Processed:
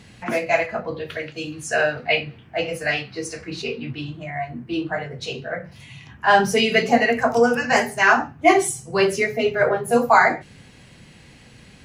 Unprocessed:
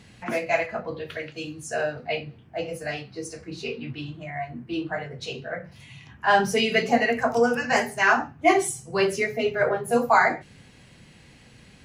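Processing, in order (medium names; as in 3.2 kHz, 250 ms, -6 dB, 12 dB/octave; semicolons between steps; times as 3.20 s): 1.52–3.62 s: peaking EQ 2.2 kHz +7.5 dB 2.1 oct; trim +4 dB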